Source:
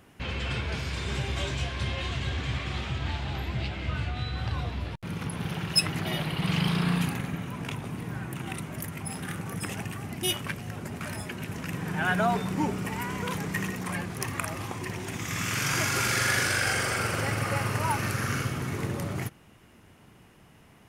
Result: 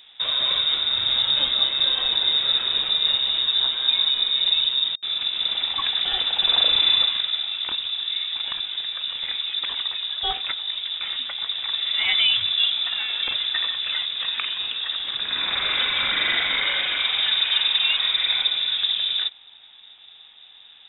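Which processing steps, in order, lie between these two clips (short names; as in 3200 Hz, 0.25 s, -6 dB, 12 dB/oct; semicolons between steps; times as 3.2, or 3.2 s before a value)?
tilt -1.5 dB/oct; inverted band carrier 3700 Hz; gain +3.5 dB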